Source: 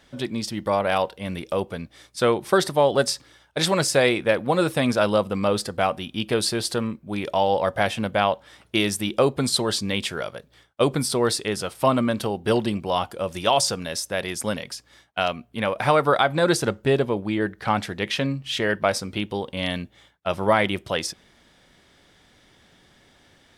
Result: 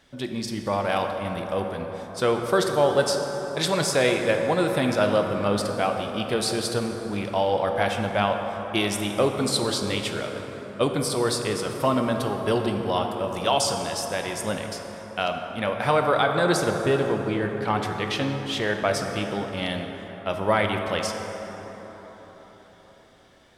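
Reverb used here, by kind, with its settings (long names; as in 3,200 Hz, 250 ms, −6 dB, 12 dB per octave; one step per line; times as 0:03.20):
dense smooth reverb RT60 4.8 s, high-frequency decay 0.4×, DRR 3.5 dB
level −3 dB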